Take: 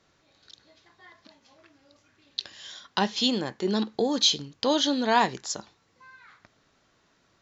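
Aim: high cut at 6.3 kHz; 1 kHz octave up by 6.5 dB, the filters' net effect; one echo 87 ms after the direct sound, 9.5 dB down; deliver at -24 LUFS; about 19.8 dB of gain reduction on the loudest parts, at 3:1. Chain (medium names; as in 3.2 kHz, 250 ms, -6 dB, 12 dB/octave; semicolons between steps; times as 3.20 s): low-pass 6.3 kHz; peaking EQ 1 kHz +7.5 dB; compression 3:1, threshold -39 dBFS; delay 87 ms -9.5 dB; trim +15 dB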